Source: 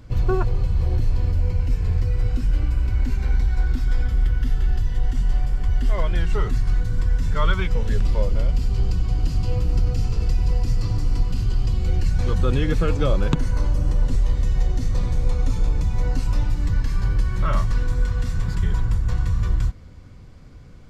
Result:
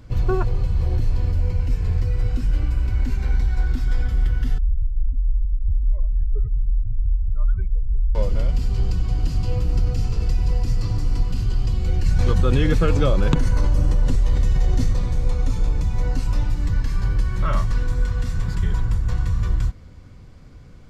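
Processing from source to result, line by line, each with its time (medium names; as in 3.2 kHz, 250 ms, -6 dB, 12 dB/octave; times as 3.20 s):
4.58–8.15 s: spectral contrast enhancement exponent 2.6
12.05–14.93 s: level flattener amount 70%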